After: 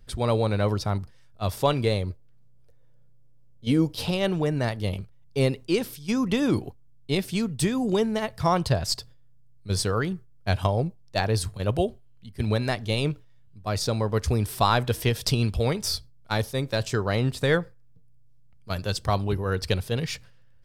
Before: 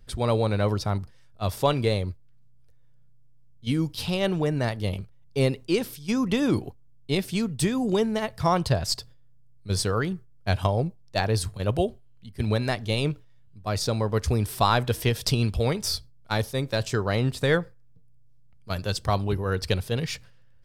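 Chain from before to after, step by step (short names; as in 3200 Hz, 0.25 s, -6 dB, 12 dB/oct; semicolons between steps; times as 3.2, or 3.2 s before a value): 2.1–4.11 bell 510 Hz +9.5 dB 1.5 oct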